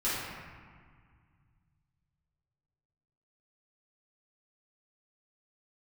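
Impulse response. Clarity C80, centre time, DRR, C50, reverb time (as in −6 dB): 0.5 dB, 119 ms, −11.5 dB, −2.5 dB, 1.8 s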